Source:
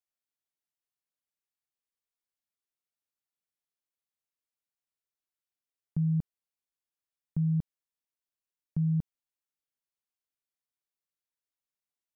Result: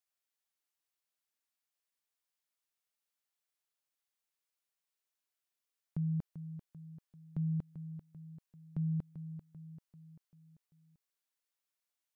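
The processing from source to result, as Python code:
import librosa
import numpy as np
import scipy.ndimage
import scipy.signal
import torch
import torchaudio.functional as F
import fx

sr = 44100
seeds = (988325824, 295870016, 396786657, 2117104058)

p1 = fx.low_shelf(x, sr, hz=330.0, db=-12.0)
p2 = p1 + fx.echo_feedback(p1, sr, ms=391, feedback_pct=51, wet_db=-11, dry=0)
y = F.gain(torch.from_numpy(p2), 3.0).numpy()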